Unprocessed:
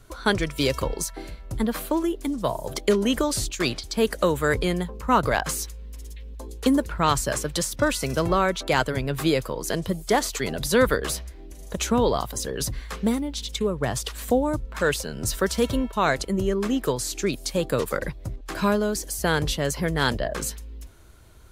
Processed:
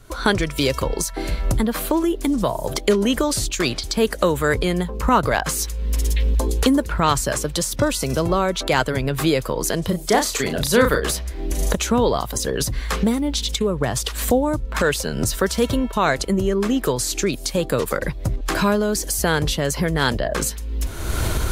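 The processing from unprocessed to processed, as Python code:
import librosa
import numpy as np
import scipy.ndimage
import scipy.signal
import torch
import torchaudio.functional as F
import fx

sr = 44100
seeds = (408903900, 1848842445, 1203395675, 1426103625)

y = fx.recorder_agc(x, sr, target_db=-15.5, rise_db_per_s=38.0, max_gain_db=30)
y = fx.dynamic_eq(y, sr, hz=1800.0, q=1.2, threshold_db=-37.0, ratio=4.0, max_db=-6, at=(7.37, 8.51), fade=0.02)
y = fx.doubler(y, sr, ms=34.0, db=-6, at=(9.88, 11.1), fade=0.02)
y = y * 10.0 ** (3.0 / 20.0)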